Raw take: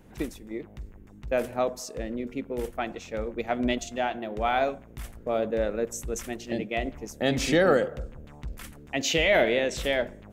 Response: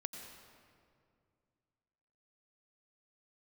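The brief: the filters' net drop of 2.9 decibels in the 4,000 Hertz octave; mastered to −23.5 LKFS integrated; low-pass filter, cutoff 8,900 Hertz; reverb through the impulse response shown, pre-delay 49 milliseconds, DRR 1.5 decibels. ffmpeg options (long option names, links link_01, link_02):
-filter_complex "[0:a]lowpass=8900,equalizer=frequency=4000:width_type=o:gain=-4,asplit=2[link_01][link_02];[1:a]atrim=start_sample=2205,adelay=49[link_03];[link_02][link_03]afir=irnorm=-1:irlink=0,volume=0dB[link_04];[link_01][link_04]amix=inputs=2:normalize=0,volume=2.5dB"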